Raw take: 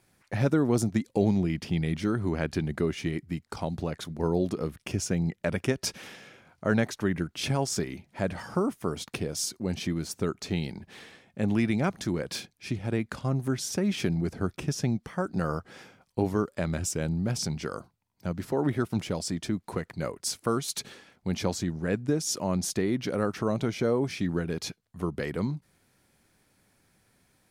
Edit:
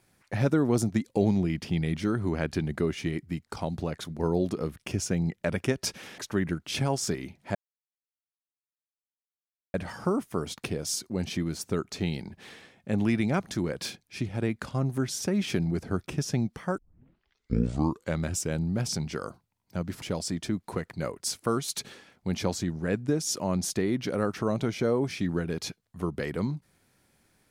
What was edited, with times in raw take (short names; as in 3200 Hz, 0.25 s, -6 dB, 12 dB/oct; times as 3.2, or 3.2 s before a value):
6.18–6.87 cut
8.24 insert silence 2.19 s
15.28 tape start 1.42 s
18.52–19.02 cut